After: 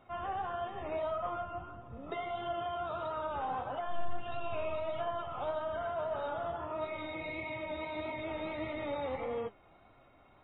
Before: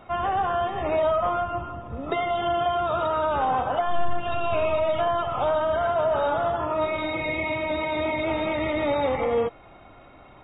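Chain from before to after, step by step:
flanger 1.6 Hz, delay 7.1 ms, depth 5.9 ms, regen +66%
level −8.5 dB

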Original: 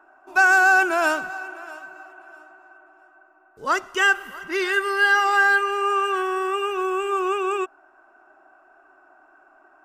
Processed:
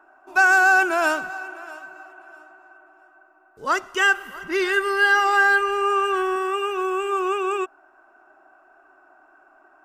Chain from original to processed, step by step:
0:04.35–0:06.36: low-shelf EQ 300 Hz +6.5 dB

